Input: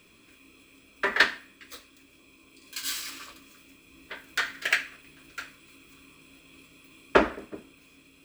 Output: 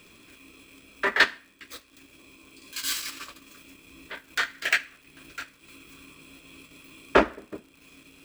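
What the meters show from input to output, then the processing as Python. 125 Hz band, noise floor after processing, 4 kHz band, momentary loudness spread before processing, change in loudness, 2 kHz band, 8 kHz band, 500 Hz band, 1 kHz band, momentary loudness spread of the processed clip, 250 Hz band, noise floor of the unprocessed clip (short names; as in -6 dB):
n/a, -58 dBFS, +1.5 dB, 22 LU, +1.5 dB, +1.5 dB, +2.5 dB, +1.0 dB, +1.5 dB, 22 LU, +1.0 dB, -58 dBFS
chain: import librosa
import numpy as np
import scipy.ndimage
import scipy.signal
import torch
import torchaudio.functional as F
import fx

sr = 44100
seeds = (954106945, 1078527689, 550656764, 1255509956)

y = fx.transient(x, sr, attack_db=-5, sustain_db=-9)
y = fx.dmg_crackle(y, sr, seeds[0], per_s=120.0, level_db=-49.0)
y = y * librosa.db_to_amplitude(5.0)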